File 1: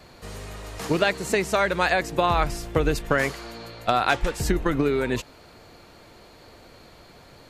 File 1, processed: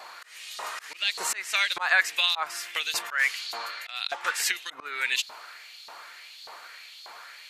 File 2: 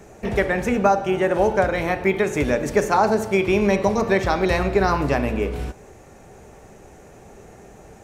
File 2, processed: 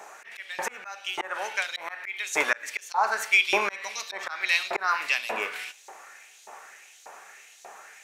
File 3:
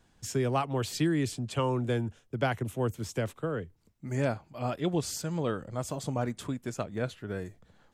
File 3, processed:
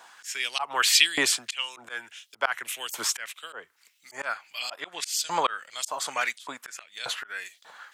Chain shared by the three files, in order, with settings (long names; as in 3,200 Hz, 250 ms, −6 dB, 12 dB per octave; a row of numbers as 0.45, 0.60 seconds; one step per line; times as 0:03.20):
auto-filter high-pass saw up 1.7 Hz 820–4,200 Hz
volume swells 328 ms
loudness normalisation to −27 LKFS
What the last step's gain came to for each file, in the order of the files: +5.5, +3.5, +16.5 decibels